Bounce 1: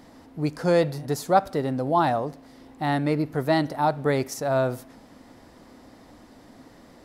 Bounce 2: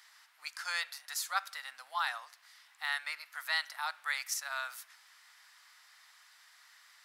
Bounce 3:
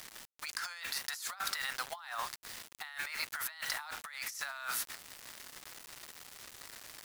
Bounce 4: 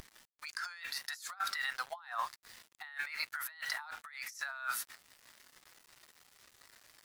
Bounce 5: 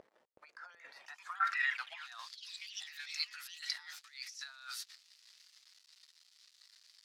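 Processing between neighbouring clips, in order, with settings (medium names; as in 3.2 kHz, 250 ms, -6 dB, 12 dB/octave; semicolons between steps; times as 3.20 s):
inverse Chebyshev high-pass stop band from 400 Hz, stop band 60 dB
bit crusher 9-bit; compressor with a negative ratio -47 dBFS, ratio -1; trim +5.5 dB
spectral contrast expander 1.5:1; trim -2.5 dB
ever faster or slower copies 373 ms, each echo +5 st, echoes 3, each echo -6 dB; band-pass sweep 530 Hz -> 4.5 kHz, 0.86–2.19 s; trim +5 dB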